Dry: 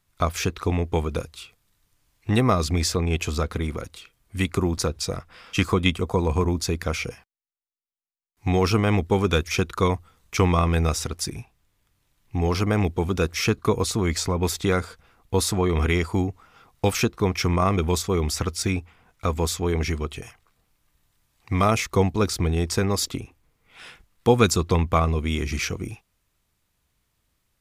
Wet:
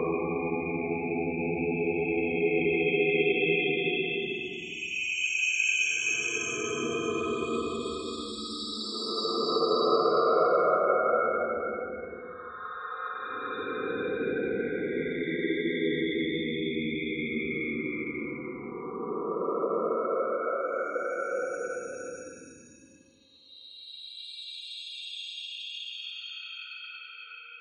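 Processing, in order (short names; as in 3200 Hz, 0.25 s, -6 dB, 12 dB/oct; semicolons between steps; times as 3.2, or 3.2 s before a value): HPF 390 Hz 12 dB/oct; in parallel at -0.5 dB: compressor, threshold -31 dBFS, peak gain reduction 16 dB; on the sum: loudest bins only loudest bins 32; Paulstretch 26×, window 0.10 s, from 3.01; flutter echo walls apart 10.4 m, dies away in 0.3 s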